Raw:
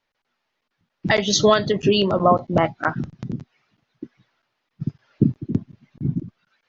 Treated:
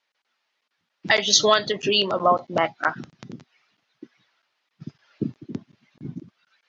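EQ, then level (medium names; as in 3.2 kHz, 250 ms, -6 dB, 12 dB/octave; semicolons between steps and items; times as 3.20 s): high-pass 630 Hz 6 dB/octave; distance through air 53 m; treble shelf 2.8 kHz +8 dB; 0.0 dB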